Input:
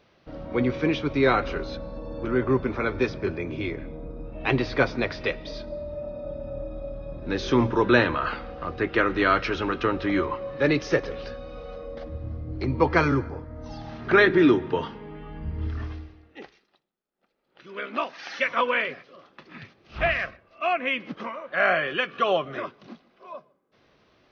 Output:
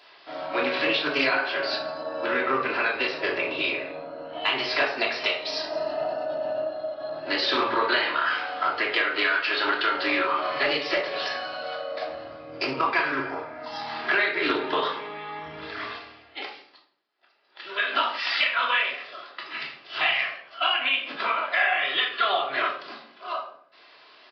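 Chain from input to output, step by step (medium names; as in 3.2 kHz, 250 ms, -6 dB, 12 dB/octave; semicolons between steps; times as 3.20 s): high-pass 660 Hz 12 dB/octave; treble shelf 3.2 kHz +8 dB; formant shift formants +2 st; resampled via 11.025 kHz; compression 8:1, threshold -31 dBFS, peak gain reduction 17 dB; simulated room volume 790 m³, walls furnished, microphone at 3 m; loudspeaker Doppler distortion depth 0.14 ms; trim +7 dB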